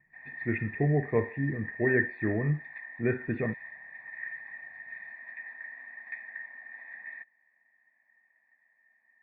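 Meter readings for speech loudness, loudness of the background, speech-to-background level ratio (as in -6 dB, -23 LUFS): -30.0 LUFS, -42.5 LUFS, 12.5 dB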